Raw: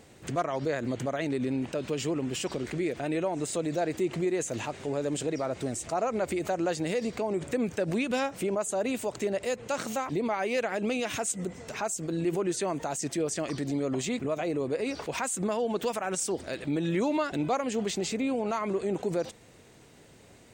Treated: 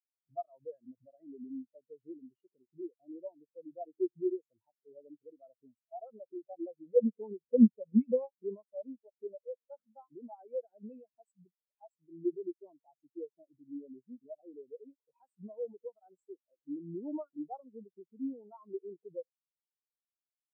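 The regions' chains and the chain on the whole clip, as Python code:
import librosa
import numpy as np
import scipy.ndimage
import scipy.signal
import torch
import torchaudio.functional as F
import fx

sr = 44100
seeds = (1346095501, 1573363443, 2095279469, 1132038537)

y = fx.chain(x, sr, fx.ripple_eq(per_octave=0.91, db=11),
    fx.doppler_dist(depth_ms=0.21), at=(6.96, 8.76))
y = fx.peak_eq(y, sr, hz=930.0, db=3.5, octaves=0.55)
y = fx.spectral_expand(y, sr, expansion=4.0)
y = F.gain(torch.from_numpy(y), 2.5).numpy()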